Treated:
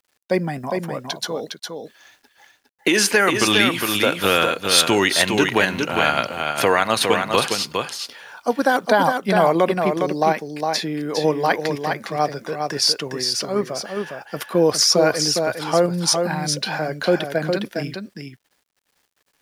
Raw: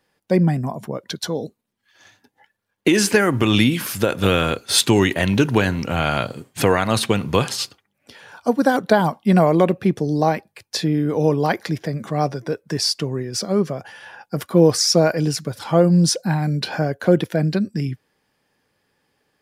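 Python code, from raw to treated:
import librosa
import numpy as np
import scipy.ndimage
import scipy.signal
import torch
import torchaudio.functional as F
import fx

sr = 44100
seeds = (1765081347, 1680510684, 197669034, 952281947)

p1 = fx.highpass(x, sr, hz=740.0, slope=6)
p2 = fx.high_shelf(p1, sr, hz=4000.0, db=-3.0)
p3 = fx.notch(p2, sr, hz=7700.0, q=12.0)
p4 = fx.level_steps(p3, sr, step_db=12)
p5 = p3 + (p4 * 10.0 ** (0.0 / 20.0))
p6 = fx.quant_dither(p5, sr, seeds[0], bits=10, dither='none')
y = p6 + fx.echo_single(p6, sr, ms=409, db=-5.0, dry=0)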